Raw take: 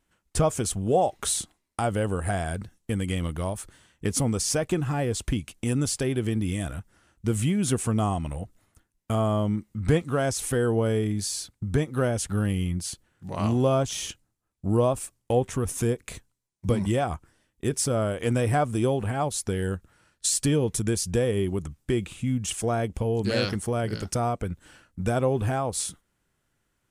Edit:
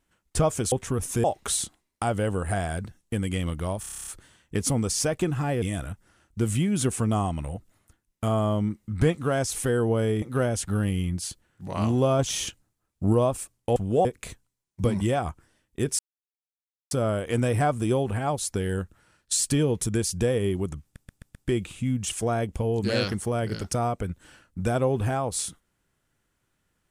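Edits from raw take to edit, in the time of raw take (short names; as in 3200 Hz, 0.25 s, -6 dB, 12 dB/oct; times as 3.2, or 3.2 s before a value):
0.72–1.01 swap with 15.38–15.9
3.57 stutter 0.03 s, 10 plays
5.12–6.49 cut
11.09–11.84 cut
13.81–14.75 gain +3 dB
17.84 insert silence 0.92 s
21.76 stutter 0.13 s, 5 plays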